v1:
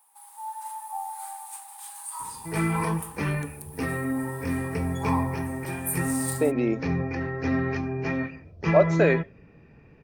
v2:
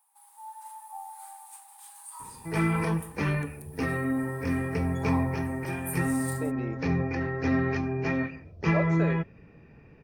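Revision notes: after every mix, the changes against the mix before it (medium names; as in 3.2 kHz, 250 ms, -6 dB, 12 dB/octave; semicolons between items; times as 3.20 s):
speech -12.0 dB; first sound -7.5 dB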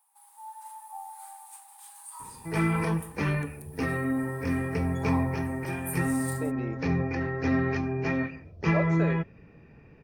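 no change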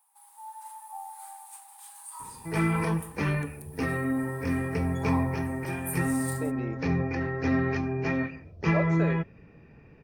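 first sound: send on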